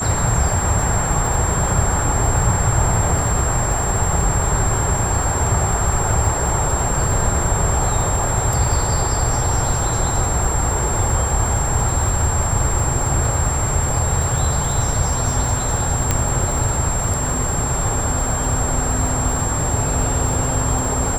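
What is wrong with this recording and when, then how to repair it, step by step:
crackle 52/s -24 dBFS
tone 7500 Hz -23 dBFS
16.11 pop -3 dBFS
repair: de-click; notch 7500 Hz, Q 30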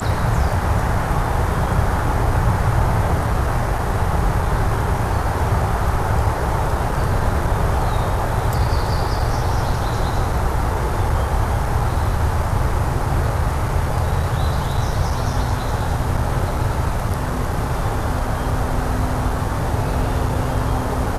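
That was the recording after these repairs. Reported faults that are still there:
16.11 pop

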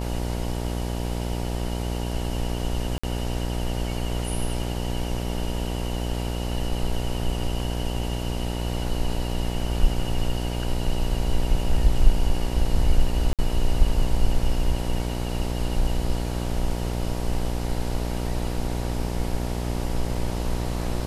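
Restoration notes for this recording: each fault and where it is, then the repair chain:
buzz 60 Hz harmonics 16 -28 dBFS
2.98–3.04 gap 55 ms
13.33–13.39 gap 57 ms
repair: de-hum 60 Hz, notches 16; interpolate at 2.98, 55 ms; interpolate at 13.33, 57 ms

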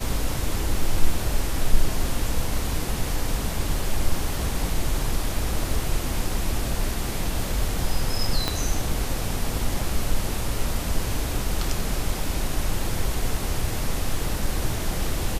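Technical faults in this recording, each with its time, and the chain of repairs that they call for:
8.48 pop -8 dBFS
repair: de-click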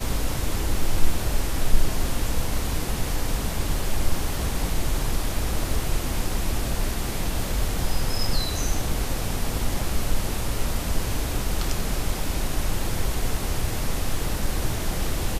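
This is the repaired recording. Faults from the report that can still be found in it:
8.48 pop

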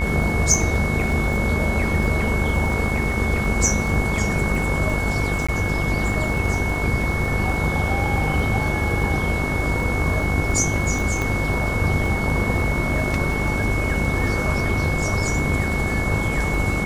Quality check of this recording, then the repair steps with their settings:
buzz 50 Hz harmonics 35 -26 dBFS
crackle 36/s -27 dBFS
tone 2200 Hz -26 dBFS
5.47–5.49 gap 15 ms
11.22 pop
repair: de-click; de-hum 50 Hz, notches 35; notch 2200 Hz, Q 30; interpolate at 5.47, 15 ms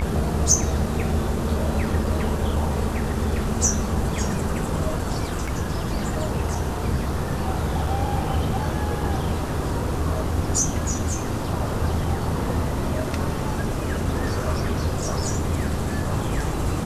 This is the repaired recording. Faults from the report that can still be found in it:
11.22 pop

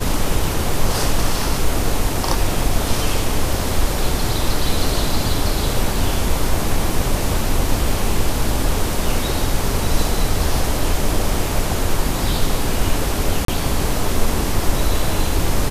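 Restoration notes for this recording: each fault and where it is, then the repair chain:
13.45–13.48 gap 33 ms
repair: interpolate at 13.45, 33 ms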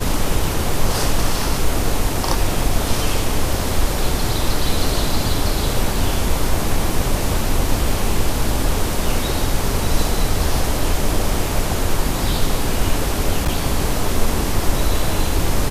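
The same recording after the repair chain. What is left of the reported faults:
none

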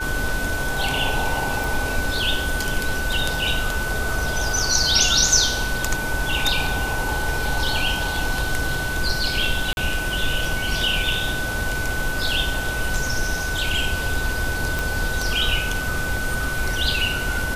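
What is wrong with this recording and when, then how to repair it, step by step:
tone 1500 Hz -26 dBFS
1.64 pop
9.73–9.77 gap 41 ms
14.79 pop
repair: de-click; notch 1500 Hz, Q 30; interpolate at 9.73, 41 ms

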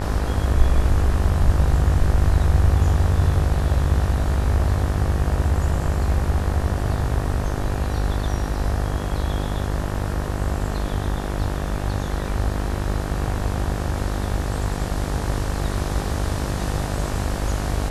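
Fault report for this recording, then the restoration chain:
buzz 50 Hz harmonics 38 -26 dBFS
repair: de-hum 50 Hz, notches 38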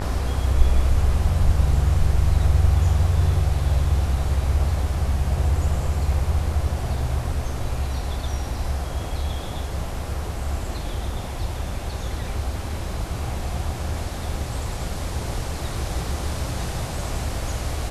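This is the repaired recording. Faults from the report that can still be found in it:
none

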